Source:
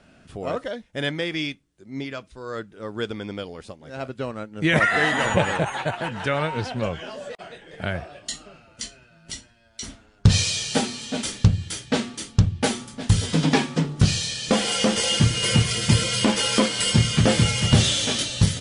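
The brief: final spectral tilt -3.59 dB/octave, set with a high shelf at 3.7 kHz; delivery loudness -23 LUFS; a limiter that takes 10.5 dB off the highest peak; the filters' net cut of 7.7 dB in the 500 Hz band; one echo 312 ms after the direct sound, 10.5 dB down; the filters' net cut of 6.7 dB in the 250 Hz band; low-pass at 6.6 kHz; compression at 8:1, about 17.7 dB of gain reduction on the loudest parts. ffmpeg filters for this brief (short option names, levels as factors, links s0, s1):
-af "lowpass=6600,equalizer=f=250:t=o:g=-8.5,equalizer=f=500:t=o:g=-7,highshelf=f=3700:g=-6,acompressor=threshold=0.0282:ratio=8,alimiter=level_in=1.33:limit=0.0631:level=0:latency=1,volume=0.75,aecho=1:1:312:0.299,volume=5.01"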